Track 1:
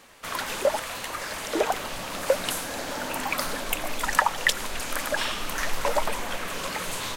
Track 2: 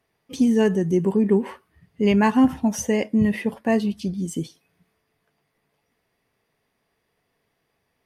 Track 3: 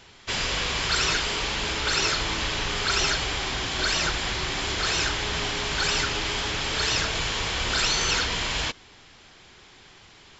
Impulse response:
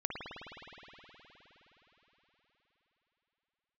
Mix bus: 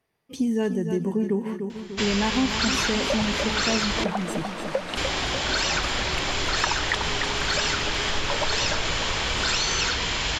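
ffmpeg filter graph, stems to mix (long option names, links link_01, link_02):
-filter_complex "[0:a]lowpass=4500,adelay=2450,volume=-2dB,asplit=2[link_01][link_02];[link_02]volume=-6dB[link_03];[1:a]volume=-3.5dB,asplit=2[link_04][link_05];[link_05]volume=-9.5dB[link_06];[2:a]adelay=1700,volume=2dB,asplit=3[link_07][link_08][link_09];[link_07]atrim=end=4.04,asetpts=PTS-STARTPTS,afade=type=out:start_time=4.036:duration=0.004:curve=hsin[link_10];[link_08]atrim=start=4.04:end=4.97,asetpts=PTS-STARTPTS,volume=0[link_11];[link_09]atrim=start=4.97,asetpts=PTS-STARTPTS,afade=type=in:duration=0.004:curve=hsin[link_12];[link_10][link_11][link_12]concat=n=3:v=0:a=1[link_13];[link_03][link_06]amix=inputs=2:normalize=0,aecho=0:1:297|594|891|1188|1485|1782|2079:1|0.51|0.26|0.133|0.0677|0.0345|0.0176[link_14];[link_01][link_04][link_13][link_14]amix=inputs=4:normalize=0,acompressor=threshold=-22dB:ratio=2"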